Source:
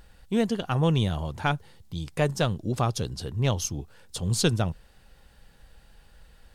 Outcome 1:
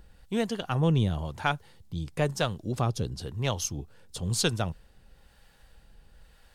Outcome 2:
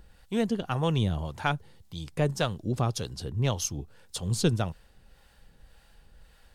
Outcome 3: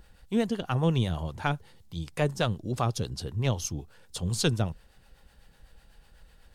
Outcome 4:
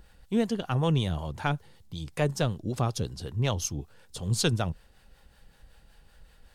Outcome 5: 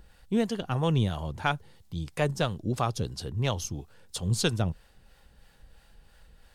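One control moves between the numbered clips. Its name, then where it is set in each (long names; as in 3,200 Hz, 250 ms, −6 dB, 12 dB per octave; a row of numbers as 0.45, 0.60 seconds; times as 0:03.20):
two-band tremolo in antiphase, speed: 1, 1.8, 8, 5.3, 3 Hertz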